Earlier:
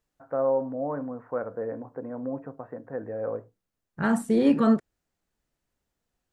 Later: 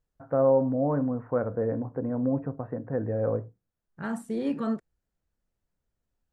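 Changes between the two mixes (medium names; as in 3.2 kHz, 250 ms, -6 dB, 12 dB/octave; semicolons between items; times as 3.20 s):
first voice: remove high-pass 520 Hz 6 dB/octave; second voice -8.5 dB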